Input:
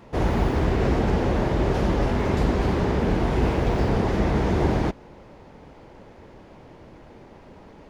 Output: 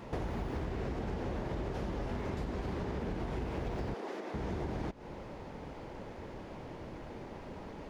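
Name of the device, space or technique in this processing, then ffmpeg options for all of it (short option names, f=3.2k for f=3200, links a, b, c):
serial compression, peaks first: -filter_complex "[0:a]acompressor=threshold=-29dB:ratio=6,acompressor=threshold=-37dB:ratio=2.5,asettb=1/sr,asplit=3[a][b][c];[a]atrim=end=3.944[d];[b]atrim=start=3.94:end=4.34,asetpts=PTS-STARTPTS,afade=t=in:d=0.004:c=qsin,afade=t=out:st=0.396:d=0.004:c=qsin,highpass=f=290:w=0.5412,highpass=f=290:w=1.3066[e];[c]atrim=start=4.336[f];[d][e]acrossfade=d=0.004:c1=hsin:c2=qsin[g];[g][f]acrossfade=d=0.004:c1=qsin:c2=hsin,volume=1dB"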